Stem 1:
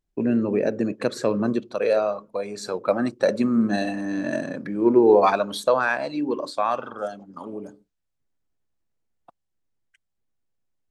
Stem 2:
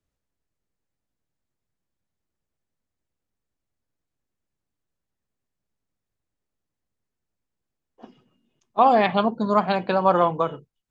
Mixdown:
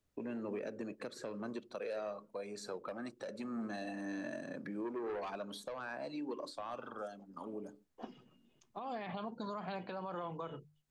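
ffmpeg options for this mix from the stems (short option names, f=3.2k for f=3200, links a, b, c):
-filter_complex "[0:a]highpass=110,asoftclip=type=tanh:threshold=-13dB,volume=-9dB[a];[1:a]alimiter=limit=-17.5dB:level=0:latency=1:release=53,bandreject=f=50:t=h:w=6,bandreject=f=100:t=h:w=6,bandreject=f=150:t=h:w=6,volume=0.5dB[b];[a][b]amix=inputs=2:normalize=0,acrossover=split=470|1400[c][d][e];[c]acompressor=threshold=-41dB:ratio=4[f];[d]acompressor=threshold=-41dB:ratio=4[g];[e]acompressor=threshold=-46dB:ratio=4[h];[f][g][h]amix=inputs=3:normalize=0,alimiter=level_in=8dB:limit=-24dB:level=0:latency=1:release=397,volume=-8dB"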